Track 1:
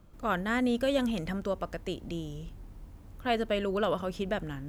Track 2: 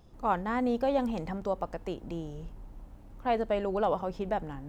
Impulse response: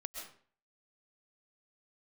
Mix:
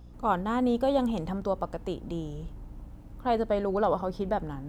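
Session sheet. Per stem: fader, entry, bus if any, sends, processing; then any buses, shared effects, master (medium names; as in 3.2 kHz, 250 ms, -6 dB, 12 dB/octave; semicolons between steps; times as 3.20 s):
-9.5 dB, 0.00 s, no send, none
+1.0 dB, 0.00 s, no send, hum 60 Hz, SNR 19 dB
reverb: none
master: none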